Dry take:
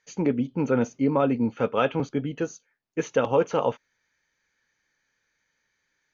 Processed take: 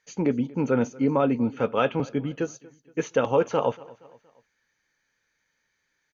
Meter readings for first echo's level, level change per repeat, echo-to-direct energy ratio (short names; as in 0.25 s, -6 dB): -22.5 dB, -6.5 dB, -21.5 dB